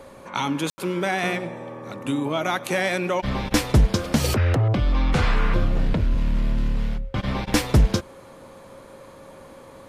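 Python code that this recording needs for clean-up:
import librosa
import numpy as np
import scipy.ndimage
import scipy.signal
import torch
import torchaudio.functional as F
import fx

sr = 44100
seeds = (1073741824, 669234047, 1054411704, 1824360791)

y = fx.notch(x, sr, hz=540.0, q=30.0)
y = fx.fix_ambience(y, sr, seeds[0], print_start_s=8.2, print_end_s=8.7, start_s=0.7, end_s=0.78)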